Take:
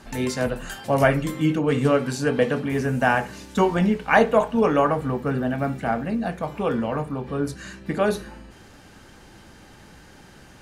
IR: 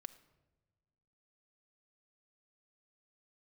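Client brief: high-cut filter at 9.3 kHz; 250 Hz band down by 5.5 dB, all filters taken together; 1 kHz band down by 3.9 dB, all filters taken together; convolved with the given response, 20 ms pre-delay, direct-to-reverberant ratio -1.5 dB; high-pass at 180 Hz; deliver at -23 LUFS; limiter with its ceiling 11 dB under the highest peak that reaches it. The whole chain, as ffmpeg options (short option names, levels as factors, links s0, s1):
-filter_complex "[0:a]highpass=180,lowpass=9300,equalizer=f=250:t=o:g=-5,equalizer=f=1000:t=o:g=-5,alimiter=limit=0.15:level=0:latency=1,asplit=2[s0][s1];[1:a]atrim=start_sample=2205,adelay=20[s2];[s1][s2]afir=irnorm=-1:irlink=0,volume=2.24[s3];[s0][s3]amix=inputs=2:normalize=0,volume=1.33"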